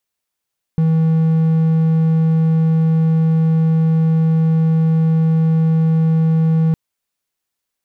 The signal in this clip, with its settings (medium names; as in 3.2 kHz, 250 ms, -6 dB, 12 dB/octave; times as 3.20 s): tone triangle 161 Hz -9 dBFS 5.96 s